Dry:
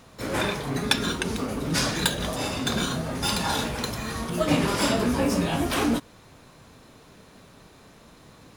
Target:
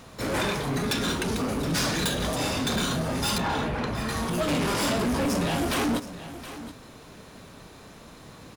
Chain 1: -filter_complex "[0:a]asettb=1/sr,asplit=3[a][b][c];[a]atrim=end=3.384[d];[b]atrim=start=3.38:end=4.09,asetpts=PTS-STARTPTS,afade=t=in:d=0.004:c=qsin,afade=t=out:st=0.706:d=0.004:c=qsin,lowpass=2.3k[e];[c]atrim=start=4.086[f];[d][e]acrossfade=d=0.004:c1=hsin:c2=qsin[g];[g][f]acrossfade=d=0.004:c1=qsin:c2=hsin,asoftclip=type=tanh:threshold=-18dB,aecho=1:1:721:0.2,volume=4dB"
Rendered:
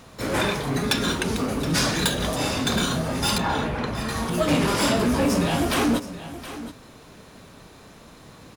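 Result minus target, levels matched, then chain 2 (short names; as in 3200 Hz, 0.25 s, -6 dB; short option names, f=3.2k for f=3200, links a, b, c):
soft clip: distortion -7 dB
-filter_complex "[0:a]asettb=1/sr,asplit=3[a][b][c];[a]atrim=end=3.384[d];[b]atrim=start=3.38:end=4.09,asetpts=PTS-STARTPTS,afade=t=in:d=0.004:c=qsin,afade=t=out:st=0.706:d=0.004:c=qsin,lowpass=2.3k[e];[c]atrim=start=4.086[f];[d][e]acrossfade=d=0.004:c1=hsin:c2=qsin[g];[g][f]acrossfade=d=0.004:c1=qsin:c2=hsin,asoftclip=type=tanh:threshold=-26.5dB,aecho=1:1:721:0.2,volume=4dB"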